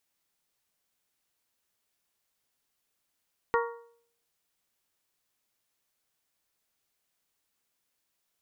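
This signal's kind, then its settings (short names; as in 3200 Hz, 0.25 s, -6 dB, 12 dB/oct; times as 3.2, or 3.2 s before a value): metal hit bell, lowest mode 468 Hz, modes 5, decay 0.60 s, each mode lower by 2 dB, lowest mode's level -23 dB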